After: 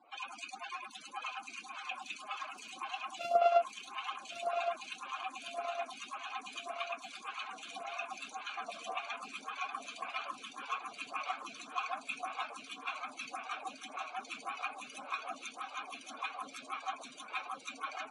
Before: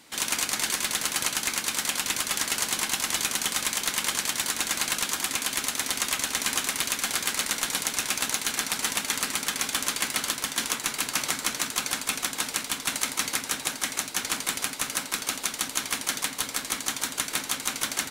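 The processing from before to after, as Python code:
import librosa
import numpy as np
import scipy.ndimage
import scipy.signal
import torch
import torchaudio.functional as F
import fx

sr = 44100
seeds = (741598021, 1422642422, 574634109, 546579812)

y = fx.sample_sort(x, sr, block=64, at=(3.19, 3.62))
y = fx.spec_repair(y, sr, seeds[0], start_s=8.7, length_s=0.21, low_hz=240.0, high_hz=1300.0, source='after')
y = fx.rider(y, sr, range_db=10, speed_s=0.5)
y = fx.spec_topn(y, sr, count=64)
y = fx.vowel_filter(y, sr, vowel='a')
y = fx.echo_feedback(y, sr, ms=1115, feedback_pct=60, wet_db=-8.5)
y = fx.stagger_phaser(y, sr, hz=1.8)
y = y * 10.0 ** (9.5 / 20.0)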